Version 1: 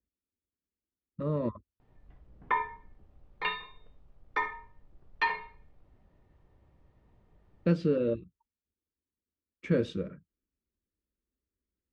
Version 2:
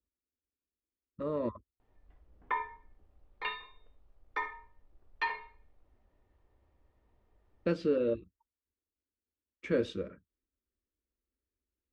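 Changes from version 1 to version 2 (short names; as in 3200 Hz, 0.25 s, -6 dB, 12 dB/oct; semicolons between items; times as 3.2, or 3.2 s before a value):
background -4.5 dB; master: add bell 150 Hz -13.5 dB 0.78 oct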